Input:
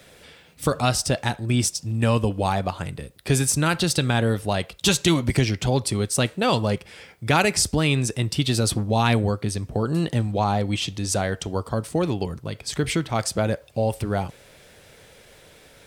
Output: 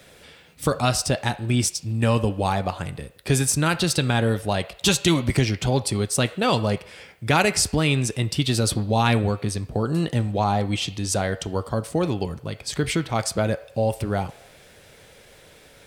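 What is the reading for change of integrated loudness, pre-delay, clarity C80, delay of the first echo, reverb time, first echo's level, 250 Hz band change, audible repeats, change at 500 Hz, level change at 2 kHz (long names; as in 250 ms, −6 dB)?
0.0 dB, 3 ms, 19.0 dB, no echo audible, 0.80 s, no echo audible, 0.0 dB, no echo audible, 0.0 dB, +0.5 dB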